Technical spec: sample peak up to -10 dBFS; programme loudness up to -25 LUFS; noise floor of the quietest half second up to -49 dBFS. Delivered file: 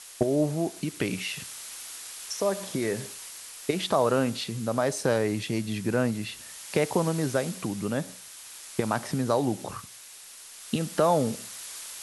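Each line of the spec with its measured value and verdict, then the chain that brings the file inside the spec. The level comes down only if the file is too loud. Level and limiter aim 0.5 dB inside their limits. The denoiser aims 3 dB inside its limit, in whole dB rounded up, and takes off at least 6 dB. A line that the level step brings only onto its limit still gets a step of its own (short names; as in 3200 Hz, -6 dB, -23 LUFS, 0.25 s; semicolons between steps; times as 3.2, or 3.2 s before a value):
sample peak -9.5 dBFS: fail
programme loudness -28.5 LUFS: OK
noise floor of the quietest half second -47 dBFS: fail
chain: denoiser 6 dB, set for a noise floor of -47 dBFS; limiter -10.5 dBFS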